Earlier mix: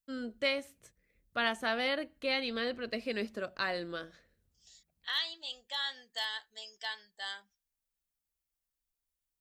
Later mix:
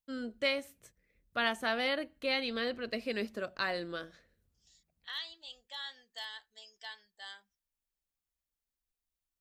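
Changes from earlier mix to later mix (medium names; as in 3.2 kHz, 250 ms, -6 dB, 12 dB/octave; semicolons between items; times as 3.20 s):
first voice: remove low-pass 12 kHz 12 dB/octave; second voice -7.0 dB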